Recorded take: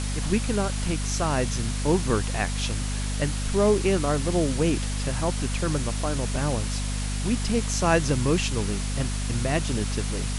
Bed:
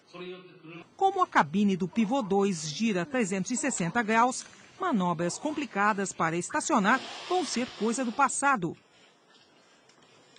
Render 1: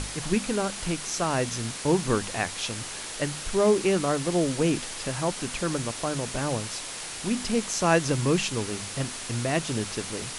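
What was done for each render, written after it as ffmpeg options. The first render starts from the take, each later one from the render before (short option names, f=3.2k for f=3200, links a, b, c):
-af "bandreject=f=50:t=h:w=6,bandreject=f=100:t=h:w=6,bandreject=f=150:t=h:w=6,bandreject=f=200:t=h:w=6,bandreject=f=250:t=h:w=6"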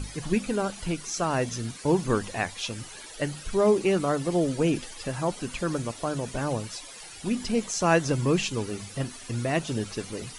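-af "afftdn=nr=14:nf=-37"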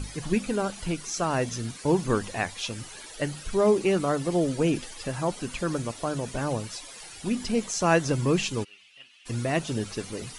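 -filter_complex "[0:a]asplit=3[a][b][c];[a]afade=t=out:st=8.63:d=0.02[d];[b]bandpass=f=2.8k:t=q:w=5.6,afade=t=in:st=8.63:d=0.02,afade=t=out:st=9.25:d=0.02[e];[c]afade=t=in:st=9.25:d=0.02[f];[d][e][f]amix=inputs=3:normalize=0"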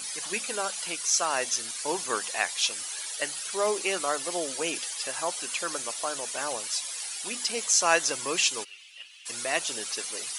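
-af "highpass=640,highshelf=f=3.3k:g=11.5"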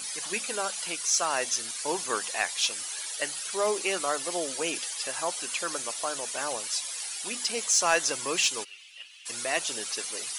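-af "asoftclip=type=tanh:threshold=-11.5dB"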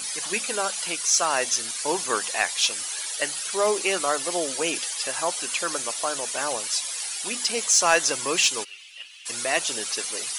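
-af "volume=4.5dB"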